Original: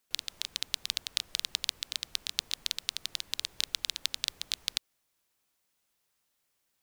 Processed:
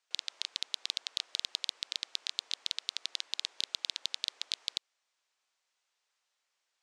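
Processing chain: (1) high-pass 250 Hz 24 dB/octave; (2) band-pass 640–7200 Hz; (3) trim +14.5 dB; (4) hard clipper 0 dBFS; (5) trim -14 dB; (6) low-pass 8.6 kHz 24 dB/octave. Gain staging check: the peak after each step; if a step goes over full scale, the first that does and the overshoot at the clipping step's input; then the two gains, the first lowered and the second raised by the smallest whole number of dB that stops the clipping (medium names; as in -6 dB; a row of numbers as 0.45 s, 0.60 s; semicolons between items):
-5.0 dBFS, -5.0 dBFS, +9.5 dBFS, 0.0 dBFS, -14.0 dBFS, -11.5 dBFS; step 3, 9.5 dB; step 3 +4.5 dB, step 5 -4 dB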